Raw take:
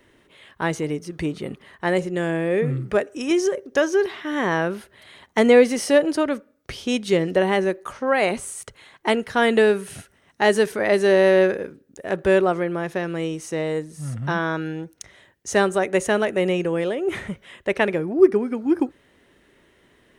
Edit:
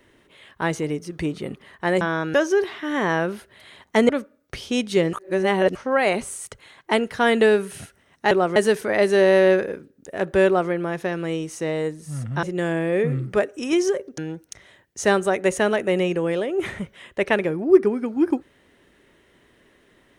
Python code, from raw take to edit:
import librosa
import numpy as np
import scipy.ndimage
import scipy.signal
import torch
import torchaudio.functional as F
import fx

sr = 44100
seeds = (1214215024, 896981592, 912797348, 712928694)

y = fx.edit(x, sr, fx.swap(start_s=2.01, length_s=1.75, other_s=14.34, other_length_s=0.33),
    fx.cut(start_s=5.51, length_s=0.74),
    fx.reverse_span(start_s=7.29, length_s=0.62),
    fx.duplicate(start_s=12.37, length_s=0.25, to_s=10.47), tone=tone)